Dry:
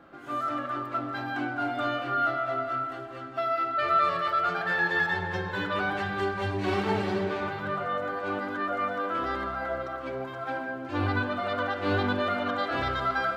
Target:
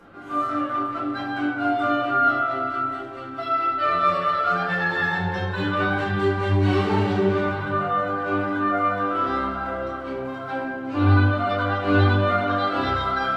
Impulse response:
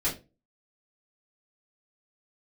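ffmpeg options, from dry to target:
-filter_complex "[0:a]acompressor=mode=upward:threshold=-50dB:ratio=2.5[link_01];[1:a]atrim=start_sample=2205,asetrate=26460,aresample=44100[link_02];[link_01][link_02]afir=irnorm=-1:irlink=0,volume=-7.5dB"

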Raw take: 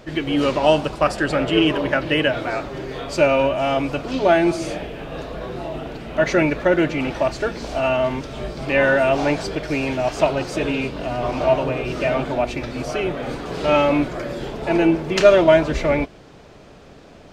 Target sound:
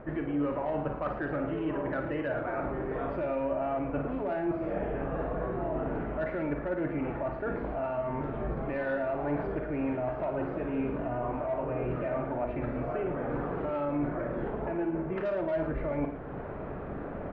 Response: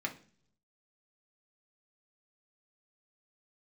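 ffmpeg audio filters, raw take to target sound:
-filter_complex "[0:a]lowpass=frequency=1700:width=0.5412,lowpass=frequency=1700:width=1.3066,acontrast=58,alimiter=limit=-13.5dB:level=0:latency=1:release=371,areverse,acompressor=threshold=-31dB:ratio=6,areverse,asplit=2[link_01][link_02];[link_02]adelay=41,volume=-11.5dB[link_03];[link_01][link_03]amix=inputs=2:normalize=0,aecho=1:1:55.39|110.8:0.355|0.282"

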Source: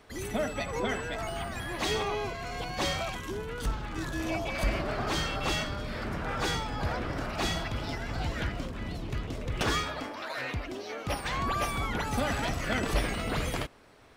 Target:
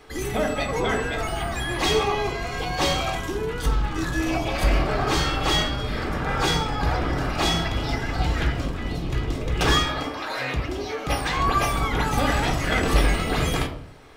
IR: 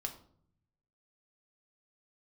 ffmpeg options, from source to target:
-filter_complex "[0:a]bandreject=frequency=96.37:width_type=h:width=4,bandreject=frequency=192.74:width_type=h:width=4,bandreject=frequency=289.11:width_type=h:width=4,bandreject=frequency=385.48:width_type=h:width=4,bandreject=frequency=481.85:width_type=h:width=4,bandreject=frequency=578.22:width_type=h:width=4,bandreject=frequency=674.59:width_type=h:width=4,bandreject=frequency=770.96:width_type=h:width=4,bandreject=frequency=867.33:width_type=h:width=4,bandreject=frequency=963.7:width_type=h:width=4,bandreject=frequency=1060.07:width_type=h:width=4,bandreject=frequency=1156.44:width_type=h:width=4,bandreject=frequency=1252.81:width_type=h:width=4,bandreject=frequency=1349.18:width_type=h:width=4,bandreject=frequency=1445.55:width_type=h:width=4,bandreject=frequency=1541.92:width_type=h:width=4,bandreject=frequency=1638.29:width_type=h:width=4,bandreject=frequency=1734.66:width_type=h:width=4,bandreject=frequency=1831.03:width_type=h:width=4,bandreject=frequency=1927.4:width_type=h:width=4,bandreject=frequency=2023.77:width_type=h:width=4,bandreject=frequency=2120.14:width_type=h:width=4,bandreject=frequency=2216.51:width_type=h:width=4,bandreject=frequency=2312.88:width_type=h:width=4,bandreject=frequency=2409.25:width_type=h:width=4,bandreject=frequency=2505.62:width_type=h:width=4,bandreject=frequency=2601.99:width_type=h:width=4,bandreject=frequency=2698.36:width_type=h:width=4,bandreject=frequency=2794.73:width_type=h:width=4,bandreject=frequency=2891.1:width_type=h:width=4,bandreject=frequency=2987.47:width_type=h:width=4,bandreject=frequency=3083.84:width_type=h:width=4[link_01];[1:a]atrim=start_sample=2205,afade=type=out:start_time=0.41:duration=0.01,atrim=end_sample=18522[link_02];[link_01][link_02]afir=irnorm=-1:irlink=0,volume=8.5dB"

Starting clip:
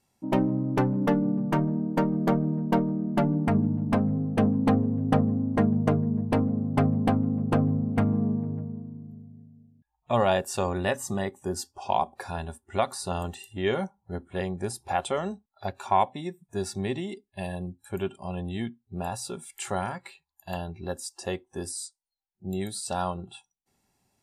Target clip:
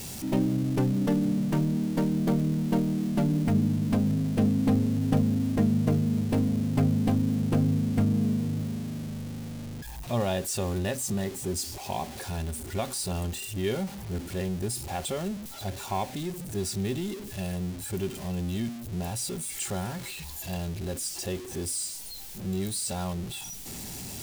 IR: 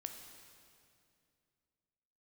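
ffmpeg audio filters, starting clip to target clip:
-af "aeval=exprs='val(0)+0.5*0.0299*sgn(val(0))':channel_layout=same,equalizer=frequency=1100:width=0.52:gain=-11"

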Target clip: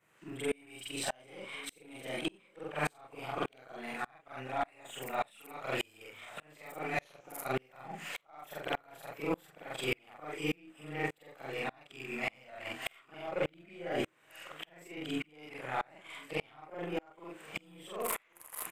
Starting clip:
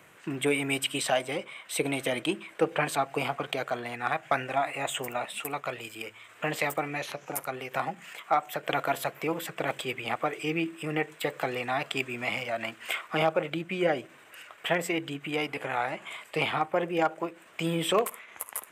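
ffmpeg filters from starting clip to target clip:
ffmpeg -i in.wav -filter_complex "[0:a]afftfilt=real='re':imag='-im':win_size=4096:overlap=0.75,areverse,acompressor=threshold=-42dB:ratio=10,areverse,aeval=exprs='0.0282*(abs(mod(val(0)/0.0282+3,4)-2)-1)':channel_layout=same,aeval=exprs='0.0282*(cos(1*acos(clip(val(0)/0.0282,-1,1)))-cos(1*PI/2))+0.000355*(cos(5*acos(clip(val(0)/0.0282,-1,1)))-cos(5*PI/2))+0.000631*(cos(8*acos(clip(val(0)/0.0282,-1,1)))-cos(8*PI/2))':channel_layout=same,asplit=2[link_01][link_02];[link_02]aecho=0:1:1089:0.112[link_03];[link_01][link_03]amix=inputs=2:normalize=0,aeval=exprs='val(0)*pow(10,-34*if(lt(mod(-1.7*n/s,1),2*abs(-1.7)/1000),1-mod(-1.7*n/s,1)/(2*abs(-1.7)/1000),(mod(-1.7*n/s,1)-2*abs(-1.7)/1000)/(1-2*abs(-1.7)/1000))/20)':channel_layout=same,volume=15dB" out.wav

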